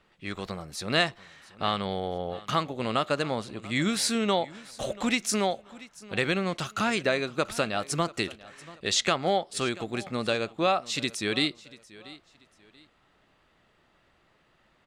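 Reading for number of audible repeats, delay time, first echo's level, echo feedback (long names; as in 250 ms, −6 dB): 2, 686 ms, −20.0 dB, 30%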